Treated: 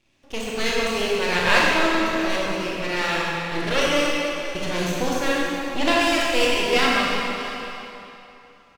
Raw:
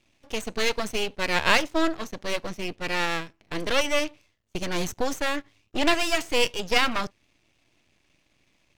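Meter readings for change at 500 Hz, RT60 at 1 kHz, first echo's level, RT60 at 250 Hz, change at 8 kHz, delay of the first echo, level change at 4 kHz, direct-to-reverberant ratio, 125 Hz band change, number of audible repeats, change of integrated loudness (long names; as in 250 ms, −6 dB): +5.5 dB, 3.1 s, −15.5 dB, 2.9 s, +3.0 dB, 676 ms, +4.0 dB, −5.0 dB, +6.0 dB, 1, +4.5 dB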